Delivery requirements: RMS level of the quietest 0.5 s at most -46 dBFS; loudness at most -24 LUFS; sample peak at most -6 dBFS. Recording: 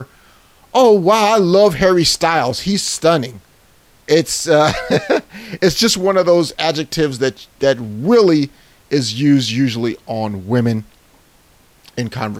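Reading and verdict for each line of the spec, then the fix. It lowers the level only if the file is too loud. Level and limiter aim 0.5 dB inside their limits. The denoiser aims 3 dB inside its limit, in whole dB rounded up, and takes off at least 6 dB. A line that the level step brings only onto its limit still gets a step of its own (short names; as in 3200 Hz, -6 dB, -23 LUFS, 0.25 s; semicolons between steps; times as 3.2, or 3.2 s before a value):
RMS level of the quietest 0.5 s -51 dBFS: OK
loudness -15.0 LUFS: fail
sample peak -2.0 dBFS: fail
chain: gain -9.5 dB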